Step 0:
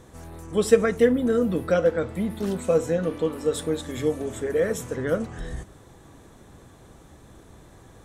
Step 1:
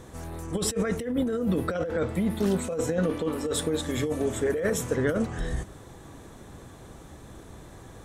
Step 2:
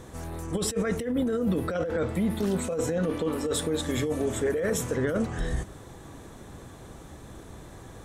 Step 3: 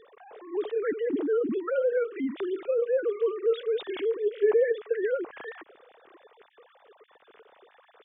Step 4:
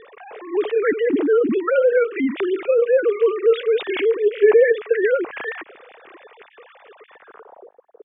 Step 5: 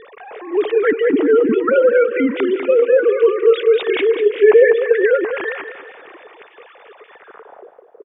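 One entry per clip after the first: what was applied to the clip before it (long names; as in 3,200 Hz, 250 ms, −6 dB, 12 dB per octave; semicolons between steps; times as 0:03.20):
compressor whose output falls as the input rises −26 dBFS, ratio −1
brickwall limiter −19 dBFS, peak gain reduction 5.5 dB; level +1 dB
three sine waves on the formant tracks
low-pass filter sweep 2,500 Hz → 420 Hz, 0:07.12–0:07.77; level +9 dB
repeating echo 197 ms, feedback 41%, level −9.5 dB; level +3.5 dB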